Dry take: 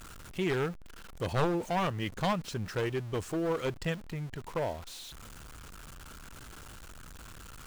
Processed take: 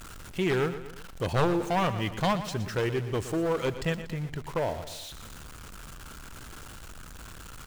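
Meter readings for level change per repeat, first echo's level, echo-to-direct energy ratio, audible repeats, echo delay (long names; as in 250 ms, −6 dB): −6.0 dB, −12.5 dB, −11.5 dB, 3, 119 ms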